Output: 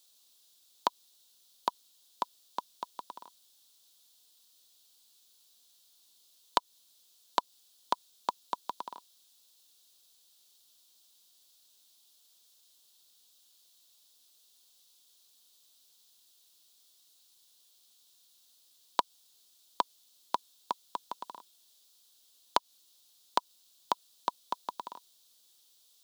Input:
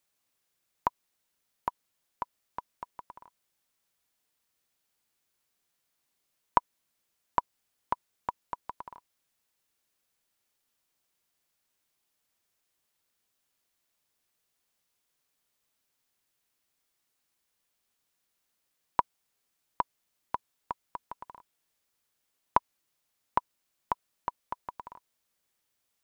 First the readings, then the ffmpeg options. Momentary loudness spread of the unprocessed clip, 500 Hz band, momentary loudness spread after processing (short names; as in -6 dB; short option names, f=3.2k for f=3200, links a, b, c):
18 LU, +1.5 dB, 14 LU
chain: -filter_complex "[0:a]highpass=f=200:w=0.5412,highpass=f=200:w=1.3066,asplit=2[a][b];[b]asoftclip=type=tanh:threshold=-15dB,volume=-4dB[c];[a][c]amix=inputs=2:normalize=0,acompressor=threshold=-21dB:ratio=6,highshelf=f=2.8k:t=q:w=3:g=9.5"